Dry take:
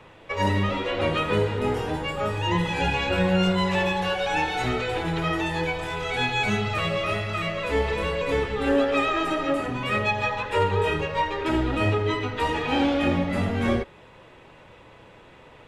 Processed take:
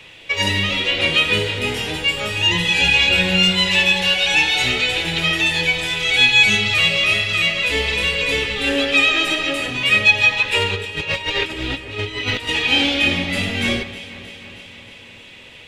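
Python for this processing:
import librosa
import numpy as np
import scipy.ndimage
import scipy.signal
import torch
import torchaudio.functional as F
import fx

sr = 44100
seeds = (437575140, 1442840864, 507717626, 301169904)

y = fx.high_shelf_res(x, sr, hz=1800.0, db=13.5, q=1.5)
y = fx.over_compress(y, sr, threshold_db=-26.0, ratio=-0.5, at=(10.75, 12.47), fade=0.02)
y = fx.echo_alternate(y, sr, ms=157, hz=2300.0, feedback_pct=81, wet_db=-13.5)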